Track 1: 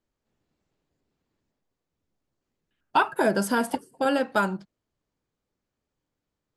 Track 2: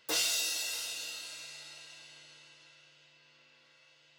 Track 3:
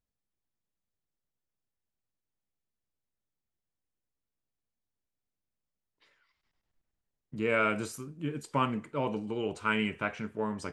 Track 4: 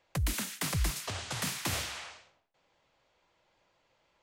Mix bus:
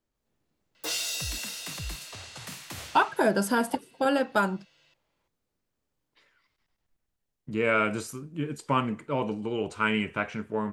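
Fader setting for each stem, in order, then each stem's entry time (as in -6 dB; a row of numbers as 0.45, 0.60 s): -1.0, -0.5, +3.0, -7.0 dB; 0.00, 0.75, 0.15, 1.05 s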